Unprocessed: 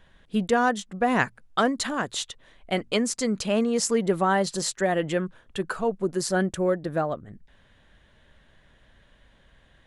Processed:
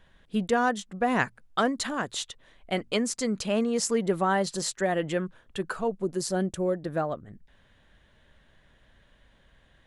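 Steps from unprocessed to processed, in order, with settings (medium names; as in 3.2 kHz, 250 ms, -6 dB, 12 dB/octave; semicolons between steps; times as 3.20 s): 5.87–6.75 s: dynamic bell 1.6 kHz, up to -8 dB, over -42 dBFS, Q 0.97; trim -2.5 dB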